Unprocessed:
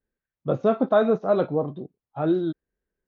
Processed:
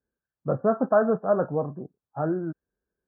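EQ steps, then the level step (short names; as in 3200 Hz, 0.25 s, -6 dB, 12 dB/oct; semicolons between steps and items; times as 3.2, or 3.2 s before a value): HPF 54 Hz; dynamic EQ 340 Hz, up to -6 dB, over -36 dBFS, Q 1.8; brick-wall FIR low-pass 1800 Hz; 0.0 dB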